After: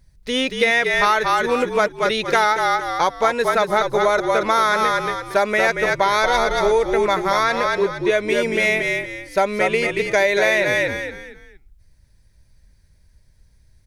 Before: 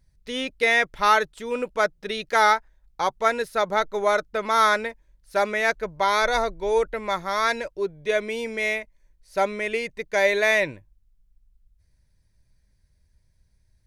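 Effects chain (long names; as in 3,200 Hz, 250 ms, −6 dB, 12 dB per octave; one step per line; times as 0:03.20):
echo with shifted repeats 230 ms, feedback 30%, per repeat −44 Hz, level −5.5 dB
downward compressor 6 to 1, threshold −22 dBFS, peak gain reduction 9 dB
0:07.43–0:08.11: high-shelf EQ 5,700 Hz −6.5 dB
level +8.5 dB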